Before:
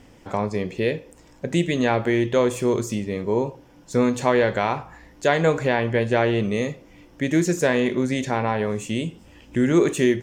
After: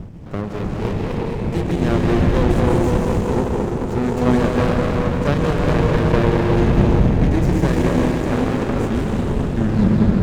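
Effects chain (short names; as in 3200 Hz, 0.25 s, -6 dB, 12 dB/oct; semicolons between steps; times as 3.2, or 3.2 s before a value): tape stop at the end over 0.67 s; wind noise 170 Hz -24 dBFS; dark delay 0.215 s, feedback 63%, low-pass 680 Hz, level -7 dB; plate-style reverb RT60 4.8 s, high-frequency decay 0.75×, pre-delay 0.12 s, DRR -3 dB; running maximum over 33 samples; gain -2 dB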